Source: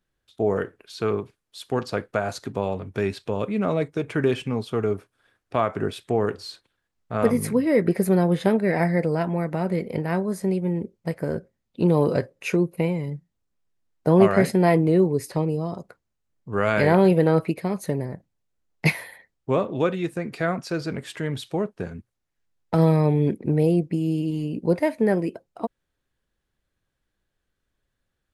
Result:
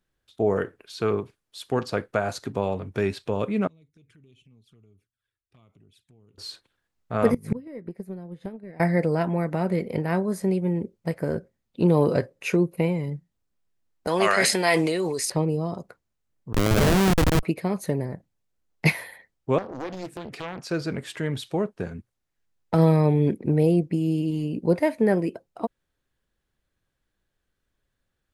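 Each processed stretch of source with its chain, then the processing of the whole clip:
0:03.67–0:06.38: flanger swept by the level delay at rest 2.8 ms, full sweep at −22 dBFS + guitar amp tone stack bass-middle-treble 6-0-2 + downward compressor 4 to 1, threshold −55 dBFS
0:07.34–0:08.80: low-shelf EQ 390 Hz +9 dB + transient designer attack +8 dB, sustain −1 dB + gate with flip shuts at −11 dBFS, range −26 dB
0:14.07–0:15.30: meter weighting curve ITU-R 468 + level that may fall only so fast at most 26 dB per second
0:16.53–0:17.43: high-shelf EQ 4,400 Hz +10 dB + comparator with hysteresis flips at −17.5 dBFS
0:19.58–0:20.71: downward compressor 2.5 to 1, threshold −33 dBFS + highs frequency-modulated by the lows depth 1 ms
whole clip: no processing

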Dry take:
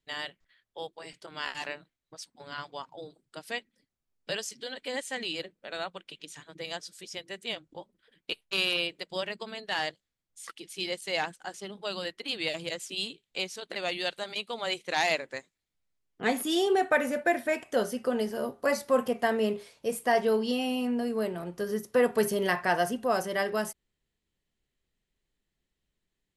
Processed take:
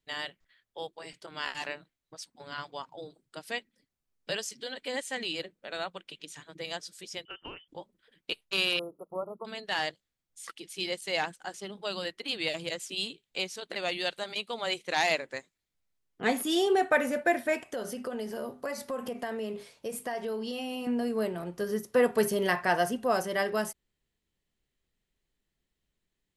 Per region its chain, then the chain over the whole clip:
0:07.25–0:07.68: parametric band 170 Hz −7.5 dB 0.37 octaves + voice inversion scrambler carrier 3,300 Hz + downward compressor 10 to 1, threshold −37 dBFS
0:08.79–0:09.45: linear-phase brick-wall band-stop 1,400–9,900 Hz + low-shelf EQ 230 Hz −6 dB
0:17.70–0:20.87: mains-hum notches 50/100/150/200/250 Hz + downward compressor 4 to 1, threshold −32 dBFS
whole clip: no processing

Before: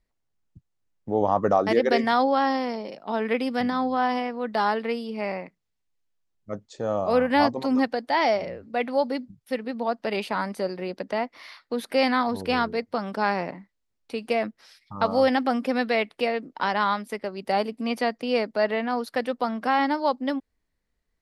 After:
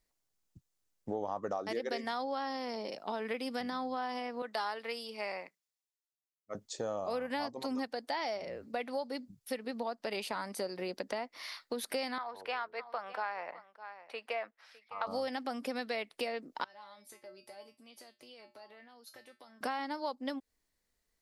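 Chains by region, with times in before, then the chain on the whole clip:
0:04.42–0:06.55: high-pass filter 710 Hz 6 dB per octave + multiband upward and downward expander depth 40%
0:12.18–0:15.07: three-way crossover with the lows and the highs turned down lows −24 dB, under 580 Hz, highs −20 dB, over 2,800 Hz + single-tap delay 607 ms −19.5 dB
0:16.64–0:19.61: high-pass filter 56 Hz + downward compressor 4 to 1, threshold −37 dBFS + tuned comb filter 120 Hz, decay 0.24 s, harmonics odd, mix 90%
whole clip: bass and treble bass −6 dB, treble +9 dB; downward compressor 5 to 1, threshold −32 dBFS; level −2 dB

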